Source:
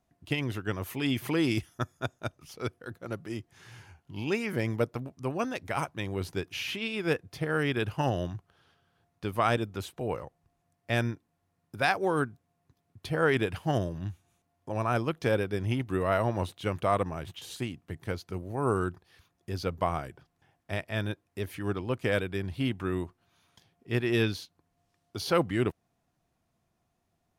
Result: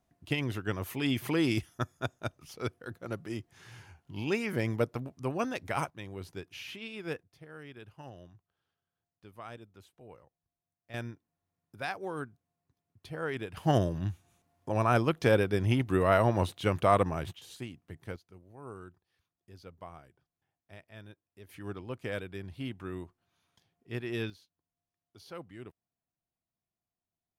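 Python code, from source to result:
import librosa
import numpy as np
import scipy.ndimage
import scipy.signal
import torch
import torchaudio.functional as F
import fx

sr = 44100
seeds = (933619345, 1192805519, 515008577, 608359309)

y = fx.gain(x, sr, db=fx.steps((0.0, -1.0), (5.9, -9.0), (7.23, -19.5), (10.94, -10.0), (13.57, 2.5), (17.33, -7.0), (18.16, -18.0), (21.49, -8.5), (24.3, -19.0)))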